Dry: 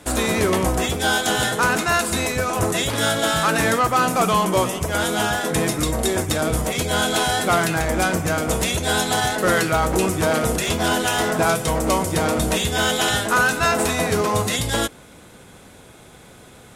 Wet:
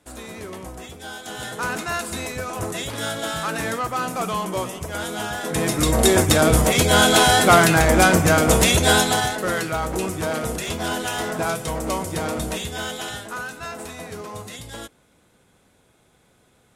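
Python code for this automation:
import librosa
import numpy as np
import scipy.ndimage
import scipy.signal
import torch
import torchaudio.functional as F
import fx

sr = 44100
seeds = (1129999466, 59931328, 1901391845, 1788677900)

y = fx.gain(x, sr, db=fx.line((1.18, -16.0), (1.67, -7.0), (5.3, -7.0), (6.03, 5.5), (8.88, 5.5), (9.46, -5.5), (12.38, -5.5), (13.48, -14.5)))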